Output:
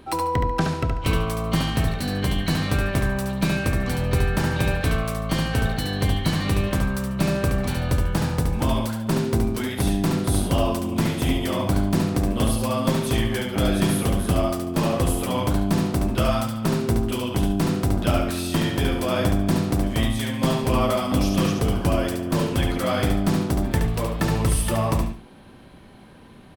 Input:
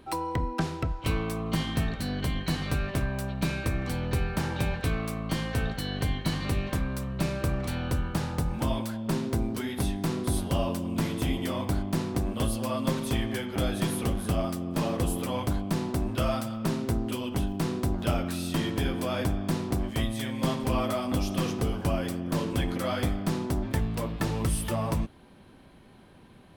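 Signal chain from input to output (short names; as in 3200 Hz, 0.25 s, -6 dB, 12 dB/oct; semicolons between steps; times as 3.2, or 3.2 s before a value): feedback echo 71 ms, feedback 26%, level -5 dB; gain +5.5 dB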